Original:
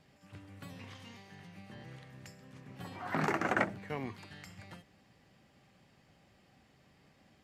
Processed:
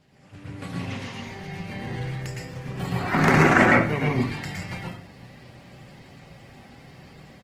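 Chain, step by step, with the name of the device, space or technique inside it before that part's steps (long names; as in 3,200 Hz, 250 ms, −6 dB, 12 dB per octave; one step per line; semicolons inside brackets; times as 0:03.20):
dynamic equaliser 700 Hz, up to −5 dB, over −48 dBFS, Q 0.77
double-tracking delay 33 ms −12 dB
0:00.60–0:01.22: low-shelf EQ 110 Hz −2.5 dB
speakerphone in a meeting room (convolution reverb RT60 0.50 s, pre-delay 107 ms, DRR −2.5 dB; automatic gain control gain up to 8.5 dB; level +4 dB; Opus 16 kbit/s 48,000 Hz)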